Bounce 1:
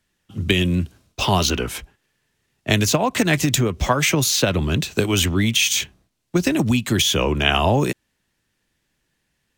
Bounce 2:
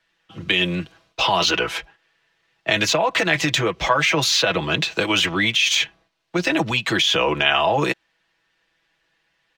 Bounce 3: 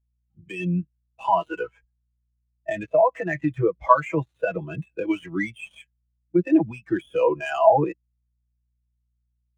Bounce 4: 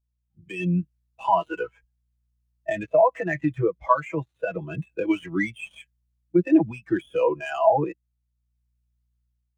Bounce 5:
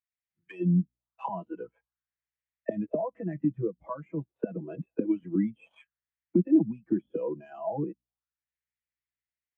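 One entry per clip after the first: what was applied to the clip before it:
three-way crossover with the lows and the highs turned down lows −15 dB, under 470 Hz, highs −20 dB, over 4,800 Hz; comb filter 6.1 ms, depth 66%; in parallel at −1 dB: compressor whose output falls as the input rises −24 dBFS, ratio −0.5; on the sum: level −1 dB
gap after every zero crossing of 0.11 ms; mains hum 60 Hz, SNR 20 dB; every bin expanded away from the loudest bin 2.5 to 1
automatic gain control gain up to 6 dB; level −4.5 dB
envelope filter 220–2,000 Hz, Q 3.7, down, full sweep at −25 dBFS; level +5.5 dB

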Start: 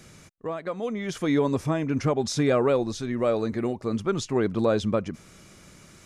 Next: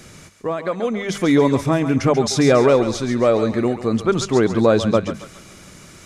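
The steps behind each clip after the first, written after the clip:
mains-hum notches 50/100/150/200 Hz
feedback echo with a high-pass in the loop 138 ms, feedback 48%, high-pass 730 Hz, level −8.5 dB
level +8 dB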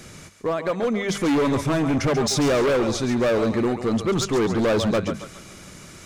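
hard clipping −17.5 dBFS, distortion −7 dB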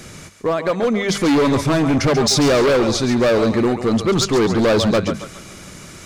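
dynamic equaliser 4,500 Hz, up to +5 dB, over −46 dBFS, Q 2.6
level +5 dB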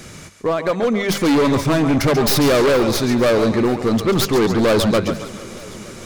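stylus tracing distortion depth 0.11 ms
feedback echo with a swinging delay time 459 ms, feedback 73%, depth 53 cents, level −21 dB

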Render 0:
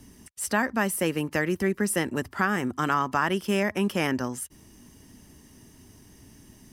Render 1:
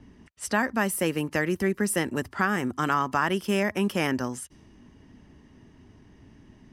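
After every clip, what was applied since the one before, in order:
low-pass that shuts in the quiet parts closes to 2,300 Hz, open at −25.5 dBFS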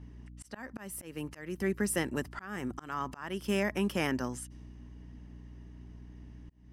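mains hum 60 Hz, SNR 15 dB
volume swells 351 ms
level −5 dB

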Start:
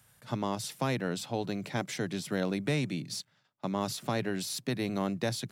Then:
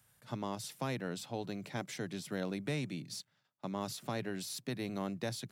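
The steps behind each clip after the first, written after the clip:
high-shelf EQ 12,000 Hz +3 dB
level −6.5 dB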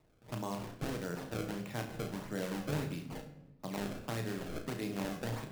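sample-and-hold swept by an LFO 27×, swing 160% 1.6 Hz
flutter between parallel walls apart 5.9 metres, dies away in 0.29 s
rectangular room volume 510 cubic metres, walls mixed, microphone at 0.54 metres
level −1.5 dB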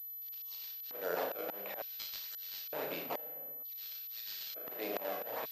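auto-filter high-pass square 0.55 Hz 580–4,400 Hz
volume swells 349 ms
switching amplifier with a slow clock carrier 12,000 Hz
level +8.5 dB

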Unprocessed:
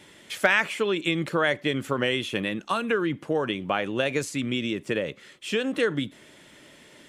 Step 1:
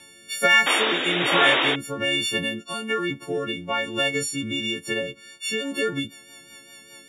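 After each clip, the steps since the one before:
every partial snapped to a pitch grid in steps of 4 semitones
sound drawn into the spectrogram noise, 0:00.66–0:01.76, 250–3,800 Hz −20 dBFS
rotating-speaker cabinet horn 1.2 Hz, later 5 Hz, at 0:05.03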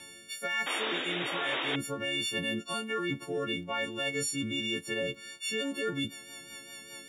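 reversed playback
downward compressor 12 to 1, threshold −29 dBFS, peak gain reduction 17 dB
reversed playback
surface crackle 70 per second −55 dBFS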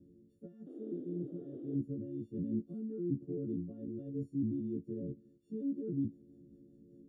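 inverse Chebyshev low-pass filter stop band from 880 Hz, stop band 50 dB
level +1.5 dB

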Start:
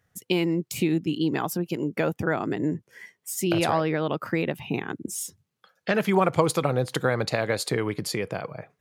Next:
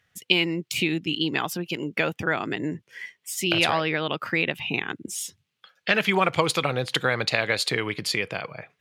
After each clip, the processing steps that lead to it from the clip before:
parametric band 2,900 Hz +14.5 dB 1.9 octaves
level −3.5 dB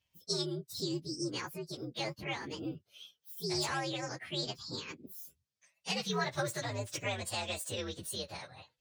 partials spread apart or drawn together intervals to 124%
level −8.5 dB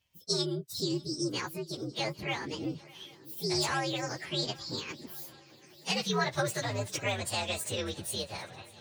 feedback echo with a long and a short gap by turns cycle 797 ms, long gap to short 3 to 1, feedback 61%, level −22.5 dB
level +4 dB

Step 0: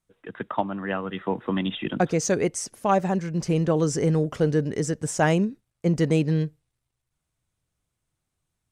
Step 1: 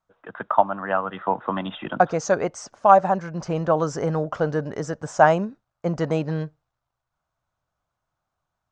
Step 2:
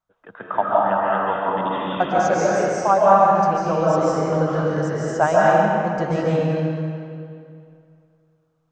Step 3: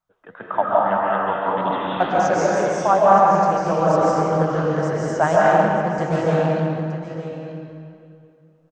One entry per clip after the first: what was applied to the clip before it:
Butterworth low-pass 7,000 Hz 36 dB per octave; flat-topped bell 930 Hz +13 dB; level −4 dB
comb and all-pass reverb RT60 2.4 s, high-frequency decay 0.8×, pre-delay 105 ms, DRR −7 dB; level −4 dB
flanger 1.8 Hz, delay 4.9 ms, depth 8.7 ms, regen +79%; single-tap delay 921 ms −11 dB; highs frequency-modulated by the lows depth 0.21 ms; level +4.5 dB

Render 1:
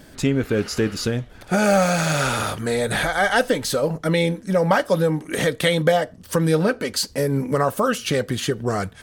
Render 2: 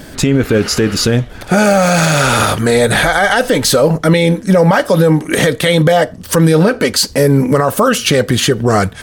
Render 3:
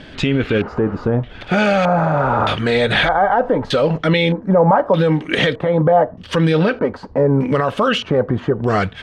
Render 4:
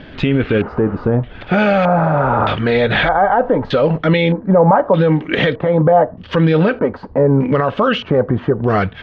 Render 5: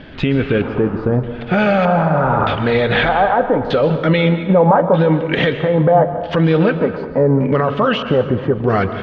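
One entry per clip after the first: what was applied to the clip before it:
boost into a limiter +14 dB; level −1 dB
auto-filter low-pass square 0.81 Hz 950–3,100 Hz; level −5.5 dB
high-frequency loss of the air 230 metres; level +2.5 dB
dense smooth reverb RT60 1.3 s, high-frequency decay 0.75×, pre-delay 110 ms, DRR 9.5 dB; level −1 dB

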